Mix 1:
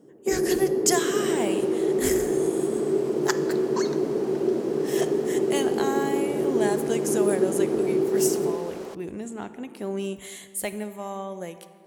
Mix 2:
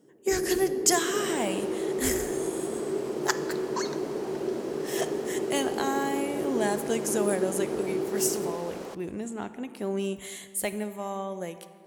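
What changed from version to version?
first sound −7.0 dB
second sound: send on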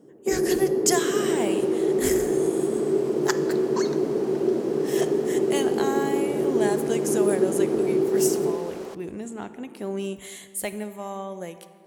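first sound +8.0 dB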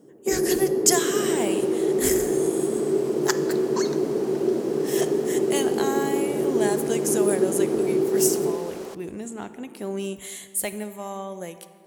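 master: add high-shelf EQ 5,500 Hz +6.5 dB

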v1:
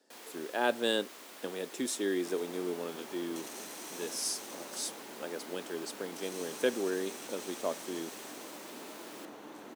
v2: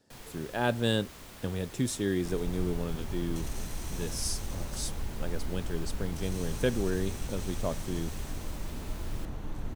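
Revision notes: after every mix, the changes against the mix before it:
master: remove high-pass filter 280 Hz 24 dB per octave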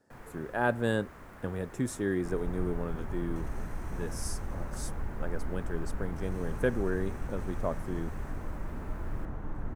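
speech: add bass and treble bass −3 dB, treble +10 dB
master: add high shelf with overshoot 2,400 Hz −14 dB, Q 1.5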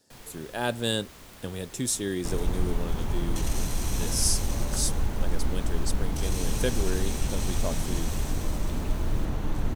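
second sound +9.0 dB
master: add high shelf with overshoot 2,400 Hz +14 dB, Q 1.5

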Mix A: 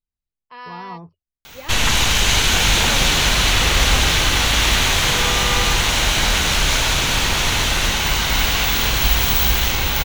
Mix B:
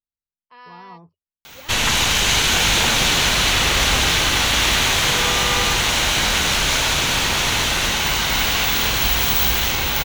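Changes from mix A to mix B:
speech −7.0 dB
master: add low-shelf EQ 67 Hz −10 dB

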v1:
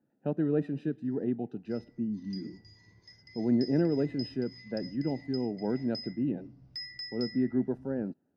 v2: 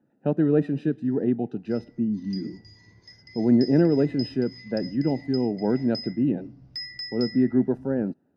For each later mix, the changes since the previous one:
speech +7.5 dB
background +5.5 dB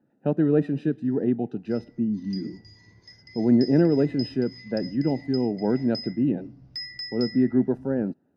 nothing changed

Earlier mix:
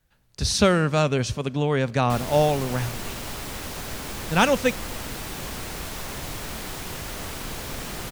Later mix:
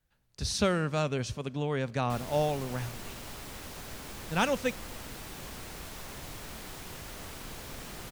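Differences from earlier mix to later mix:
speech −8.5 dB
background −9.5 dB

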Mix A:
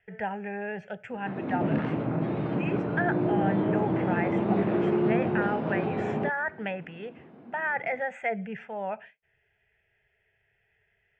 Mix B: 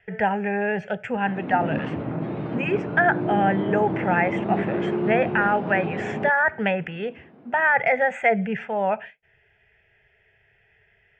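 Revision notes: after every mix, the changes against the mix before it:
speech +10.0 dB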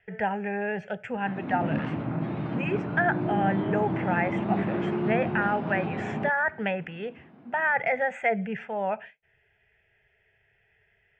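speech −5.5 dB
background: add parametric band 460 Hz −7.5 dB 0.85 octaves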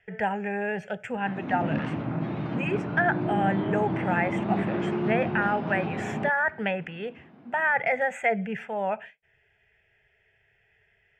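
master: remove high-frequency loss of the air 110 metres

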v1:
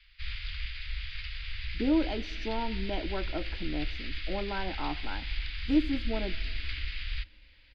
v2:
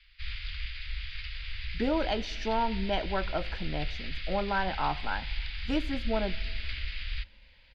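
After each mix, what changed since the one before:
speech +8.0 dB
master: add parametric band 310 Hz −15 dB 0.71 octaves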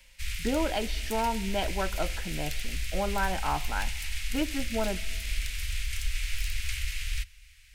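speech: entry −1.35 s
background: remove Chebyshev low-pass with heavy ripple 4,900 Hz, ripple 3 dB

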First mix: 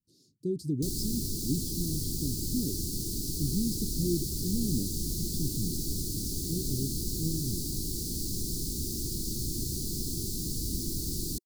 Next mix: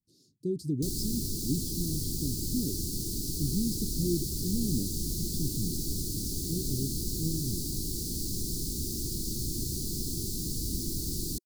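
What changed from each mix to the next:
nothing changed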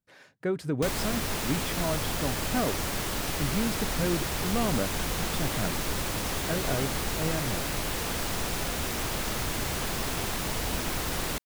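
master: remove Chebyshev band-stop filter 360–4,400 Hz, order 4

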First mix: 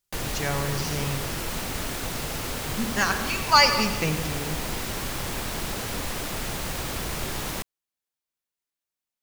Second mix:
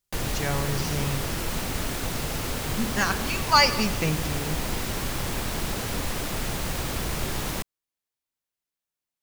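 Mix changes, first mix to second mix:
speech: send −7.0 dB
master: add low-shelf EQ 320 Hz +3.5 dB

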